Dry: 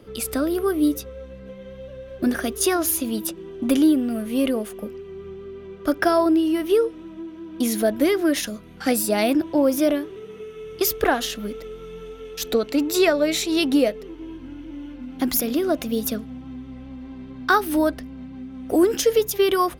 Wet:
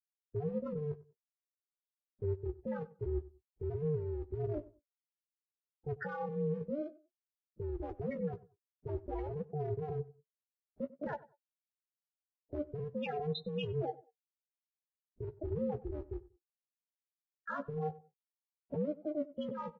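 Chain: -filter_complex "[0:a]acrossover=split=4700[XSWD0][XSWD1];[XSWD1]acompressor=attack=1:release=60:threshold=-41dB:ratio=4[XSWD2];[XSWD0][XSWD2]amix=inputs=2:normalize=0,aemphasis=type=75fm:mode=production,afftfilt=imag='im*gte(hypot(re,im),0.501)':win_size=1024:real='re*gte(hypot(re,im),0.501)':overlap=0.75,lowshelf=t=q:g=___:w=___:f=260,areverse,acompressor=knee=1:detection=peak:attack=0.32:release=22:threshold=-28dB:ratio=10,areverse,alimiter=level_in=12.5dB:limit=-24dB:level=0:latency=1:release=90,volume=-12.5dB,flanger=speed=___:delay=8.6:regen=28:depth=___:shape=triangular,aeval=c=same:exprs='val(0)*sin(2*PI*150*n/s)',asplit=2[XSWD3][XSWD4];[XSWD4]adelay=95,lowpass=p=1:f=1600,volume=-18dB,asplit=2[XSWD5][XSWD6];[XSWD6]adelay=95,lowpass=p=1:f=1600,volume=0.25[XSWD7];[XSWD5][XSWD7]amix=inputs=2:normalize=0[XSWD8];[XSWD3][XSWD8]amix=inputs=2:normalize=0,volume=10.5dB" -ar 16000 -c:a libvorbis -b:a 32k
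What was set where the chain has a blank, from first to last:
6, 1.5, 0.53, 7.9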